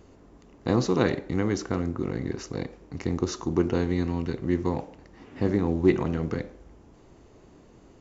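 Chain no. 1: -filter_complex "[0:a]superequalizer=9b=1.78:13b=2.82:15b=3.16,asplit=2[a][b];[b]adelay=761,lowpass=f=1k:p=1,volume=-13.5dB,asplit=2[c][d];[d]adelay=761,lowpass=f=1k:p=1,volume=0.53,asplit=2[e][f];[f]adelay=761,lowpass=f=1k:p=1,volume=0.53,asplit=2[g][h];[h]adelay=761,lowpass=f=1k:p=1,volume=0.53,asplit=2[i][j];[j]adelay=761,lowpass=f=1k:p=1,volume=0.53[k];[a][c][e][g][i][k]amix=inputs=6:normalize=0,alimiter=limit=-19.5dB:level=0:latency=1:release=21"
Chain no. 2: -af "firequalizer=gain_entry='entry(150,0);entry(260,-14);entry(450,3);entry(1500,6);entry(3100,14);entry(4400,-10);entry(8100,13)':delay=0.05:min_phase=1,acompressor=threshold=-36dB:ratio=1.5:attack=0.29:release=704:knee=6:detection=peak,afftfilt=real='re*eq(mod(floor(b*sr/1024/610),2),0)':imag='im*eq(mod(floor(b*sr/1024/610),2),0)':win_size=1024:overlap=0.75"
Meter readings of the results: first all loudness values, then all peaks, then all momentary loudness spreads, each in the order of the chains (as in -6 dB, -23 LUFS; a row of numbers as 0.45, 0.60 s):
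-31.5, -37.0 LUFS; -19.5, -17.5 dBFS; 13, 21 LU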